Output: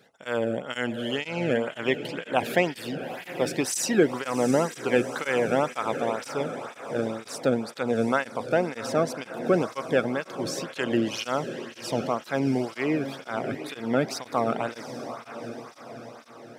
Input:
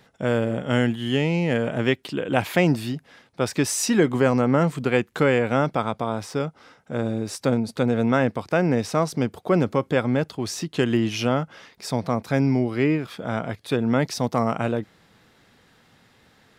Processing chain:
feedback delay with all-pass diffusion 756 ms, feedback 52%, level −10 dB
through-zero flanger with one copy inverted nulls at 2 Hz, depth 1.1 ms

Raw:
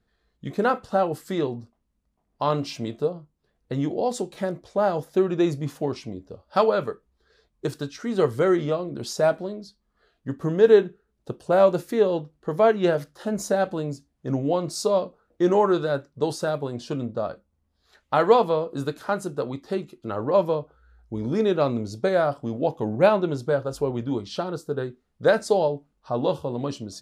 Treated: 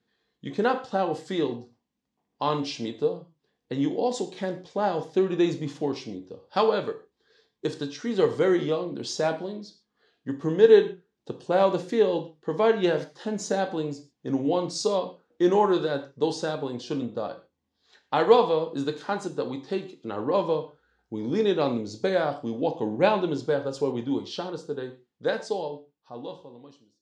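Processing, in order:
fade-out on the ending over 3.15 s
loudspeaker in its box 180–7,200 Hz, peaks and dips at 620 Hz −7 dB, 1,300 Hz −7 dB, 3,300 Hz +3 dB
reverb whose tail is shaped and stops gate 160 ms falling, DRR 7.5 dB

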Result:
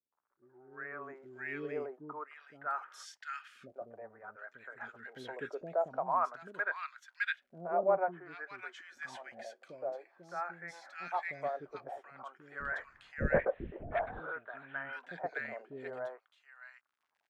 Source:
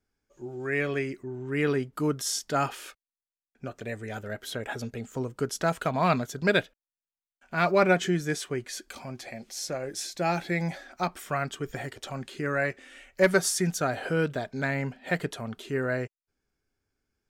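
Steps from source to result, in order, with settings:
surface crackle 88 per second −49 dBFS
LFO wah 0.5 Hz 570–1,600 Hz, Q 2.8
0:12.60–0:14.20: linear-prediction vocoder at 8 kHz whisper
three-band delay without the direct sound lows, mids, highs 120/730 ms, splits 390/1,600 Hz

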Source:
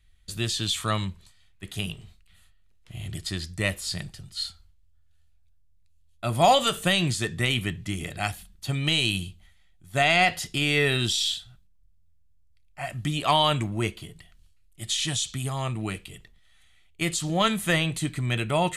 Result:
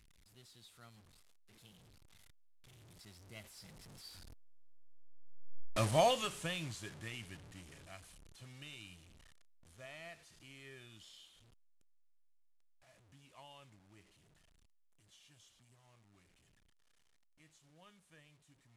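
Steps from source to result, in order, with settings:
linear delta modulator 64 kbit/s, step −26 dBFS
source passing by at 0:05.60, 27 m/s, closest 2.5 metres
level +2 dB

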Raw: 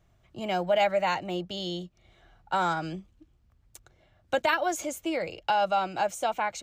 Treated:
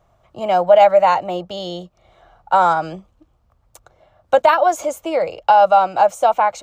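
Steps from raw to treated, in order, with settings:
flat-topped bell 790 Hz +10.5 dB
level +3.5 dB

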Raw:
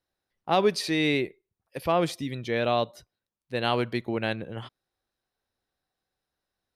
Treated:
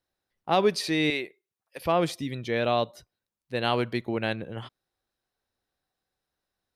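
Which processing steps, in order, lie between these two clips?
0:01.10–0:01.81: high-pass filter 750 Hz 6 dB per octave

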